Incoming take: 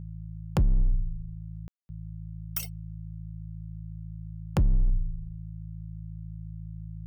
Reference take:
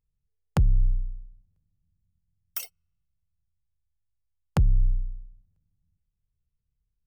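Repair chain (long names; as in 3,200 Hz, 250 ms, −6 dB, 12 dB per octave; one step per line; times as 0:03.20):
clipped peaks rebuilt −18 dBFS
hum removal 54.1 Hz, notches 3
ambience match 0:01.68–0:01.89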